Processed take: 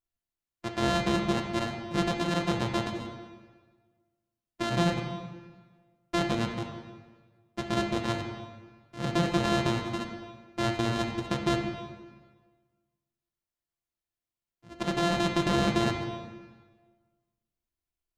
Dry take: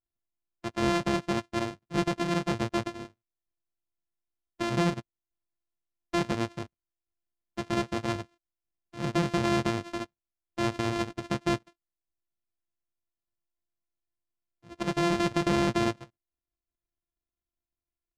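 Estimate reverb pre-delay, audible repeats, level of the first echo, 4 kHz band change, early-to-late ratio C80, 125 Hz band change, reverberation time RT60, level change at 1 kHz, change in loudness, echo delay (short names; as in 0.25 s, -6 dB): 16 ms, none, none, +3.0 dB, 6.5 dB, +1.5 dB, 1.4 s, +1.0 dB, 0.0 dB, none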